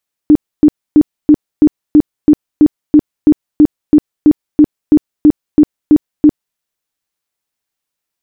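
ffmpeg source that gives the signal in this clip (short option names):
-f lavfi -i "aevalsrc='0.841*sin(2*PI*300*mod(t,0.33))*lt(mod(t,0.33),16/300)':d=6.27:s=44100"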